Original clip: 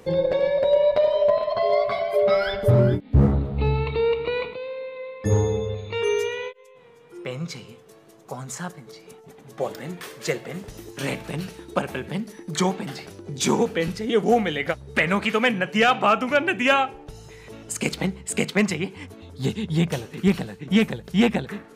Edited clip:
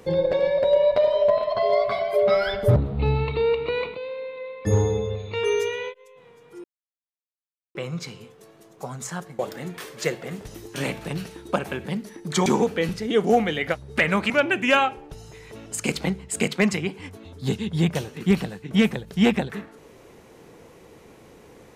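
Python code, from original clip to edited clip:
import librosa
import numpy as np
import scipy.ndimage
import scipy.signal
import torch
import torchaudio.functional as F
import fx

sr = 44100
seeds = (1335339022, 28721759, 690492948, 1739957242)

y = fx.edit(x, sr, fx.cut(start_s=2.76, length_s=0.59),
    fx.insert_silence(at_s=7.23, length_s=1.11),
    fx.cut(start_s=8.87, length_s=0.75),
    fx.cut(start_s=12.69, length_s=0.76),
    fx.cut(start_s=15.29, length_s=0.98), tone=tone)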